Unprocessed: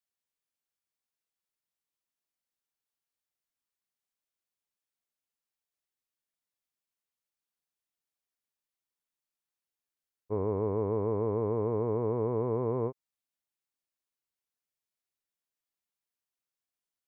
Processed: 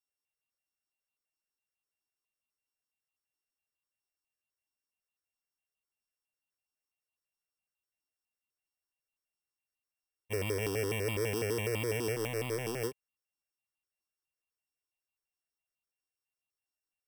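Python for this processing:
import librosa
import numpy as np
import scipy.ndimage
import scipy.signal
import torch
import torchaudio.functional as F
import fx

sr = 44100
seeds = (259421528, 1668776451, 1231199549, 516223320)

y = np.r_[np.sort(x[:len(x) // 16 * 16].reshape(-1, 16), axis=1).ravel(), x[len(x) // 16 * 16:]]
y = fx.power_curve(y, sr, exponent=1.4, at=(12.15, 12.84))
y = fx.phaser_held(y, sr, hz=12.0, low_hz=560.0, high_hz=1600.0)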